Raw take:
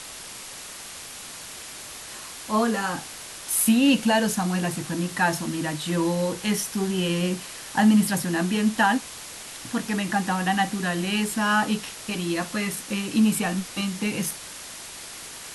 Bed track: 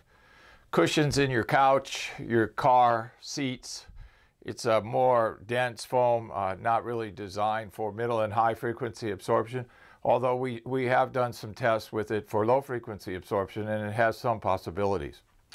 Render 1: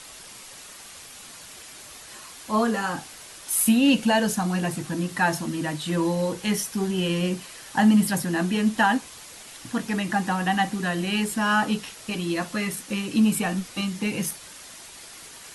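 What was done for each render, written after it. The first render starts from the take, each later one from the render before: denoiser 6 dB, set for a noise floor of -40 dBFS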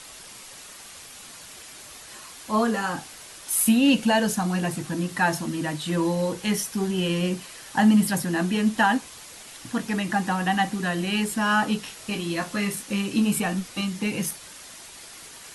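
11.82–13.4 doubler 25 ms -7.5 dB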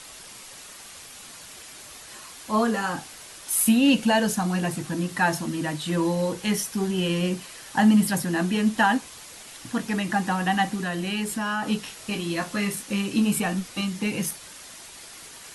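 10.75–11.68 compressor 2.5:1, threshold -25 dBFS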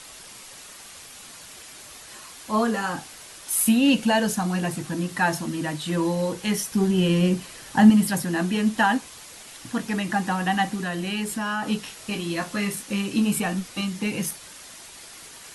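6.71–7.9 low shelf 360 Hz +7 dB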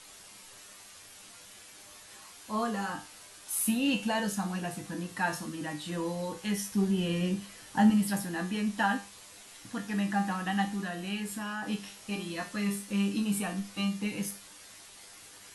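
resonator 100 Hz, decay 0.33 s, harmonics all, mix 80%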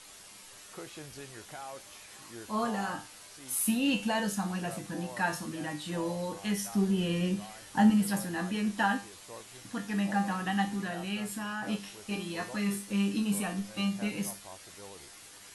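add bed track -22 dB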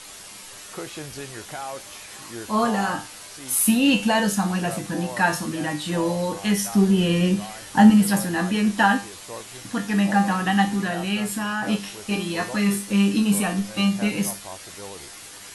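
gain +10 dB

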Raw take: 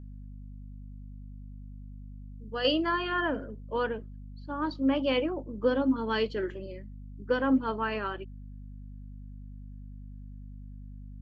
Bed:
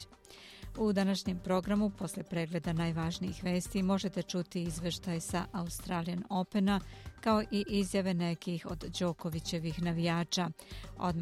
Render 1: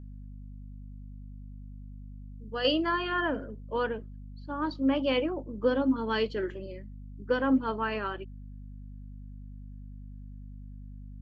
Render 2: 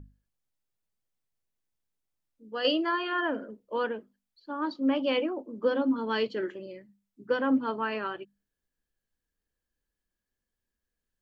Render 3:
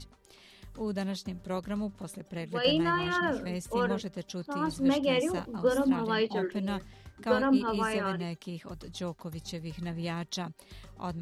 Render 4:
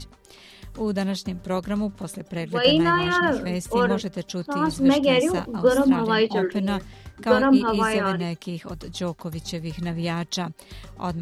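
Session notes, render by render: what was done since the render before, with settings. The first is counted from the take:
nothing audible
notches 50/100/150/200/250 Hz
add bed -3 dB
gain +8 dB

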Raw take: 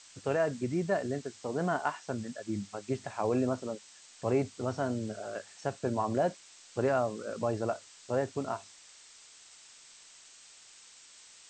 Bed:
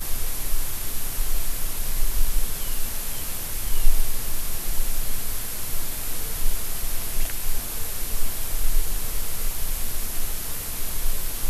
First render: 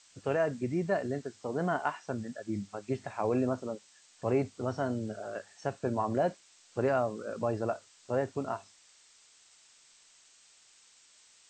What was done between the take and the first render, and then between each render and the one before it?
noise print and reduce 6 dB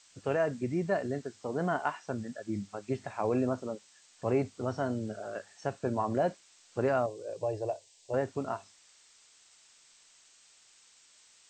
7.06–8.14 fixed phaser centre 550 Hz, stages 4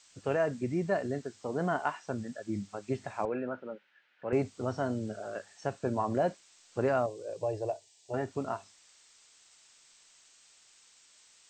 3.25–4.33 speaker cabinet 260–2700 Hz, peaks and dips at 280 Hz -6 dB, 410 Hz -5 dB, 700 Hz -7 dB, 1100 Hz -10 dB, 1500 Hz +8 dB; 7.72–8.31 notch comb 530 Hz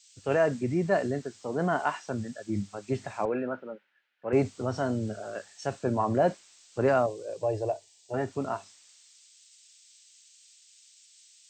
in parallel at -1 dB: limiter -28 dBFS, peak gain reduction 11.5 dB; on the sum: three-band expander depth 70%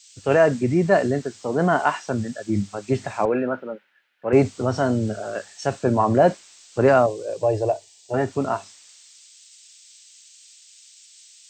gain +8 dB

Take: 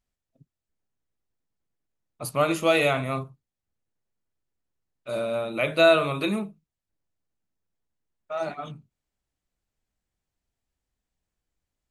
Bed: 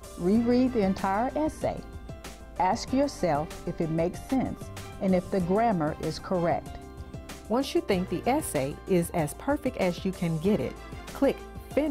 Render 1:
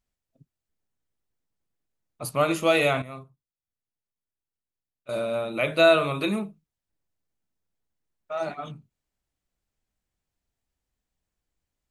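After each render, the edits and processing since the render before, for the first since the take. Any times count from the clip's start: 3.02–5.09 gain -11 dB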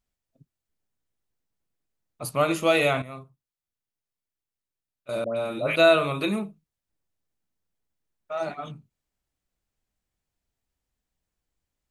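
5.24–5.76 dispersion highs, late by 0.123 s, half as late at 1200 Hz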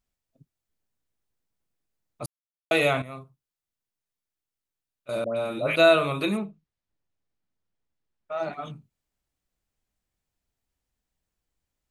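2.26–2.71 mute; 6.37–8.53 air absorption 96 m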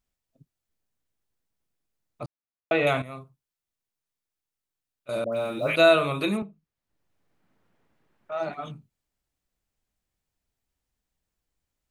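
2.23–2.87 LPF 2300 Hz; 5.32–5.72 block floating point 7-bit; 6.42–8.32 three-band squash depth 70%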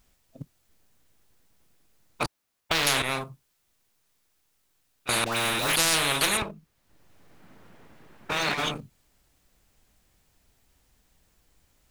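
sample leveller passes 1; spectral compressor 10:1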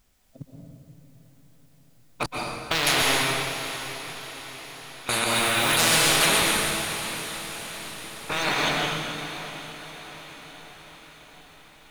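diffused feedback echo 0.708 s, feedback 57%, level -12 dB; plate-style reverb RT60 2 s, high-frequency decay 0.95×, pre-delay 0.11 s, DRR -2 dB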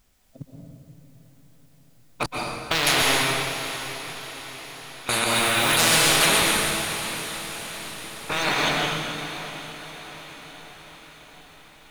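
gain +1.5 dB

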